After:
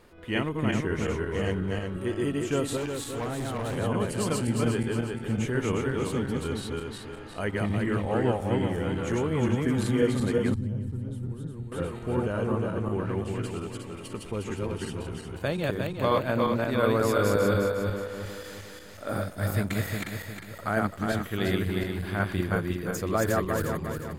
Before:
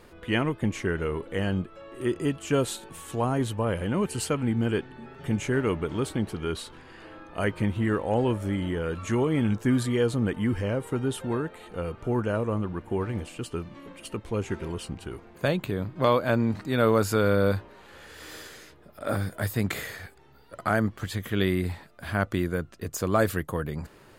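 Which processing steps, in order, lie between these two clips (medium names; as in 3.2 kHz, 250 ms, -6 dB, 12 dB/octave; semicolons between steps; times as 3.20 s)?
backward echo that repeats 179 ms, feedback 64%, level -0.5 dB; 2.77–3.77 s: hard clipper -24.5 dBFS, distortion -21 dB; 10.54–11.72 s: FFT filter 140 Hz 0 dB, 610 Hz -20 dB, 2.4 kHz -23 dB, 4.1 kHz -16 dB; trim -4 dB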